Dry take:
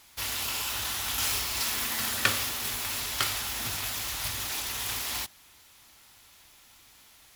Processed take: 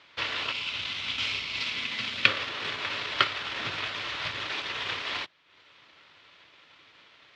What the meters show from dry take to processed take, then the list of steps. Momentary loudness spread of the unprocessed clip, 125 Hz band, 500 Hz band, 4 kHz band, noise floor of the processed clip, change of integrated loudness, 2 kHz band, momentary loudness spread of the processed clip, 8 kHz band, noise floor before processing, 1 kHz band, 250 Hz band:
5 LU, -4.0 dB, +3.0 dB, +2.0 dB, -58 dBFS, -0.5 dB, +4.0 dB, 7 LU, -19.0 dB, -57 dBFS, +1.5 dB, -0.5 dB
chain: time-frequency box 0.52–2.28 s, 290–2000 Hz -9 dB; cabinet simulation 170–3600 Hz, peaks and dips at 230 Hz -9 dB, 520 Hz +3 dB, 800 Hz -8 dB; transient shaper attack +3 dB, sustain -9 dB; trim +5.5 dB

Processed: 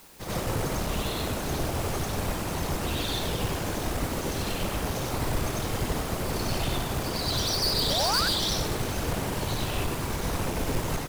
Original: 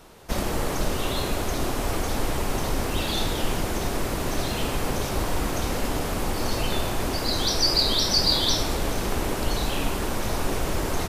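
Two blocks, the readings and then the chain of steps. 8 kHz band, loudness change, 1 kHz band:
-2.5 dB, -3.0 dB, -2.5 dB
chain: whisper effect; painted sound rise, 7.99–8.29 s, 520–1700 Hz -24 dBFS; in parallel at -6 dB: word length cut 6-bit, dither triangular; on the sum: hard clipper -18 dBFS, distortion -11 dB; on a send: reverse echo 95 ms -3 dB; on the sum: upward expansion 1.5:1, over -32 dBFS; trim -5.5 dB

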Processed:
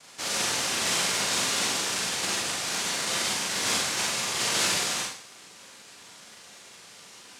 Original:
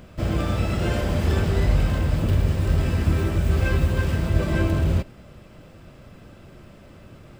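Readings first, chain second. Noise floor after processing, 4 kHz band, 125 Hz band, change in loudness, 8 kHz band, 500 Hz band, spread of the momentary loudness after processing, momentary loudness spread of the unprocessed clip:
-49 dBFS, +12.5 dB, -25.5 dB, -2.5 dB, +19.0 dB, -8.0 dB, 4 LU, 3 LU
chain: high-pass 560 Hz 6 dB/octave; noise-vocoded speech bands 1; Schroeder reverb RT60 0.52 s, combs from 32 ms, DRR -2.5 dB

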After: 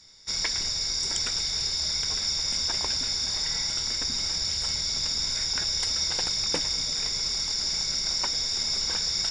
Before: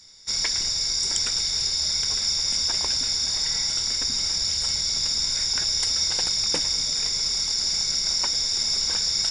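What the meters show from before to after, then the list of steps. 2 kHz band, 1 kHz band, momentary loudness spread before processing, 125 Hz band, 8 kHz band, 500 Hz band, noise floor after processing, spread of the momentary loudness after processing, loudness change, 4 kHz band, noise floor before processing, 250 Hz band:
-0.5 dB, 0.0 dB, 1 LU, 0.0 dB, -4.5 dB, 0.0 dB, -30 dBFS, 1 LU, -3.5 dB, -3.5 dB, -27 dBFS, 0.0 dB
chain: treble shelf 7.5 kHz -11.5 dB

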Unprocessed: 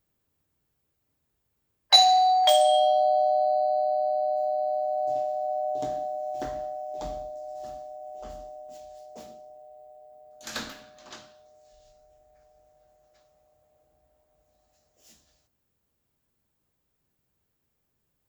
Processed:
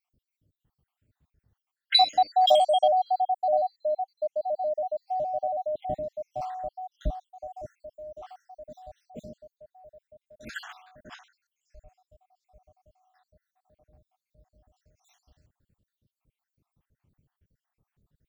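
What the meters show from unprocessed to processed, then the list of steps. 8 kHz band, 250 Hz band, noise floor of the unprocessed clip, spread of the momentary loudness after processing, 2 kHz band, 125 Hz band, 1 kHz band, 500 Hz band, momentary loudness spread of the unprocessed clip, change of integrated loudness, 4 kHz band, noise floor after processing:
under -10 dB, -1.5 dB, -77 dBFS, 23 LU, 0.0 dB, +6.5 dB, -2.0 dB, -2.0 dB, 22 LU, -2.0 dB, -3.5 dB, under -85 dBFS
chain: random holes in the spectrogram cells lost 71%; tone controls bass +12 dB, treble -9 dB; spectral selection erased 3.53–6.29 s, 780–1800 Hz; trim +2.5 dB

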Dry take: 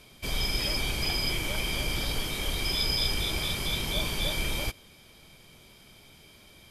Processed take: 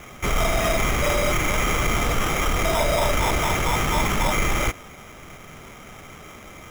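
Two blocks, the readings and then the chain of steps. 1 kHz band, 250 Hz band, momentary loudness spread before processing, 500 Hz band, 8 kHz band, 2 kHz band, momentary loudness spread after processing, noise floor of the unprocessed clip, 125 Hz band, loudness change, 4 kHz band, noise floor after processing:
+17.0 dB, +9.5 dB, 5 LU, +14.0 dB, +8.0 dB, +8.5 dB, 20 LU, -55 dBFS, +8.5 dB, +6.5 dB, -1.5 dB, -43 dBFS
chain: in parallel at 0 dB: peak limiter -26.5 dBFS, peak gain reduction 10.5 dB; on the sum: sample-and-hold 10×; saturation -19 dBFS, distortion -19 dB; trim +6 dB

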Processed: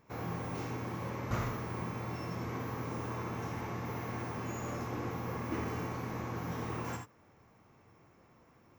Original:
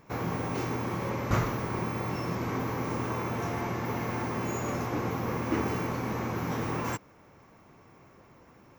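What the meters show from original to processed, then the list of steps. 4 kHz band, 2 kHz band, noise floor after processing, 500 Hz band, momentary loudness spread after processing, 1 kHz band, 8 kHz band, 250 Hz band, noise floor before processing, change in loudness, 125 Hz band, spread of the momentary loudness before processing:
-7.0 dB, -7.0 dB, -64 dBFS, -7.5 dB, 2 LU, -7.0 dB, -7.0 dB, -7.5 dB, -57 dBFS, -6.5 dB, -5.5 dB, 3 LU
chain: gated-style reverb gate 100 ms rising, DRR 4 dB; trim -8.5 dB

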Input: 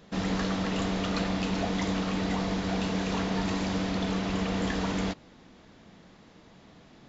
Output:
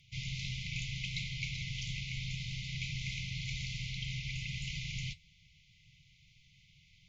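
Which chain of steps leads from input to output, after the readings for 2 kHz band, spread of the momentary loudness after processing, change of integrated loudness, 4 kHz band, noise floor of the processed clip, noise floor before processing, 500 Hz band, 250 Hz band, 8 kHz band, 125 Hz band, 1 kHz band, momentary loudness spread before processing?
-4.5 dB, 2 LU, -9.0 dB, -3.0 dB, -65 dBFS, -55 dBFS, under -40 dB, -21.0 dB, no reading, -5.0 dB, under -40 dB, 1 LU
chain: bass shelf 440 Hz -8.5 dB; flange 1.5 Hz, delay 1.5 ms, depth 9.5 ms, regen -71%; peaking EQ 1.5 kHz +12.5 dB 1.3 oct; frequency shift -320 Hz; brick-wall FIR band-stop 190–2000 Hz

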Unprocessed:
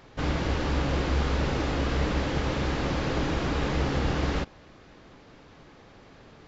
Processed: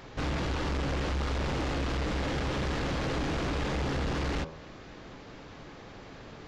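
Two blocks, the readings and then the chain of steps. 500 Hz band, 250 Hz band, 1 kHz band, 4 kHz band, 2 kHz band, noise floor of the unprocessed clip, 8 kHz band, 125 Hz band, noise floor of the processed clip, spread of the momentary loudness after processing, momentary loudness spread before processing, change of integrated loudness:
-3.5 dB, -4.0 dB, -3.0 dB, -2.5 dB, -3.0 dB, -53 dBFS, no reading, -4.0 dB, -48 dBFS, 16 LU, 2 LU, -3.5 dB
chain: de-hum 79.87 Hz, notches 19; in parallel at -2 dB: compression, threshold -34 dBFS, peak gain reduction 12 dB; on the sum: saturation -27.5 dBFS, distortion -9 dB

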